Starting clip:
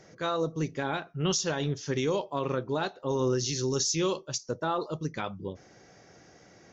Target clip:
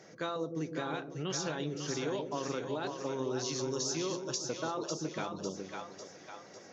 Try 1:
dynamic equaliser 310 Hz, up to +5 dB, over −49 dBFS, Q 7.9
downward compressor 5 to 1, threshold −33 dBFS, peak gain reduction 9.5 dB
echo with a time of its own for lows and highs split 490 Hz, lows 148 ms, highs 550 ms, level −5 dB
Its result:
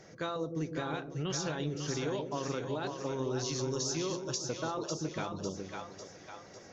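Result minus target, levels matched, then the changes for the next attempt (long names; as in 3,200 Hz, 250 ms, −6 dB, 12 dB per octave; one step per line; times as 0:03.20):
125 Hz band +3.5 dB
add after downward compressor: high-pass filter 160 Hz 12 dB per octave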